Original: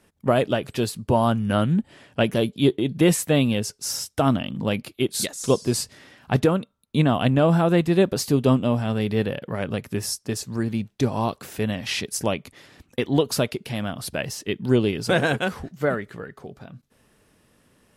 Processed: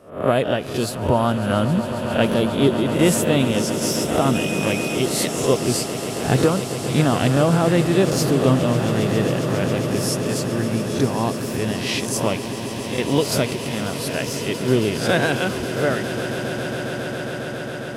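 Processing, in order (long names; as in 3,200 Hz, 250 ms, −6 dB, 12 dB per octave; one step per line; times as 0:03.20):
peak hold with a rise ahead of every peak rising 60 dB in 0.45 s
echo that builds up and dies away 136 ms, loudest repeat 8, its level −15 dB
0:04.34–0:04.94: steady tone 2,500 Hz −29 dBFS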